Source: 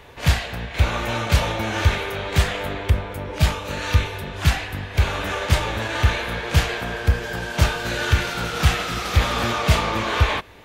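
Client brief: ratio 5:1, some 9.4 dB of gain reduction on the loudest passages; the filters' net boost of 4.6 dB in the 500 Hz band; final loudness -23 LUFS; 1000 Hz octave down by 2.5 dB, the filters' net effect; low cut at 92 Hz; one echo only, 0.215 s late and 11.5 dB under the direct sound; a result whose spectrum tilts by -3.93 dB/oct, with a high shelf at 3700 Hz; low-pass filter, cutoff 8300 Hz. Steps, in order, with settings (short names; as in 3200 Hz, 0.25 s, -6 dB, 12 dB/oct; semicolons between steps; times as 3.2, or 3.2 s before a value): HPF 92 Hz; LPF 8300 Hz; bell 500 Hz +7 dB; bell 1000 Hz -5 dB; high shelf 3700 Hz -4.5 dB; compressor 5:1, threshold -25 dBFS; echo 0.215 s -11.5 dB; gain +6 dB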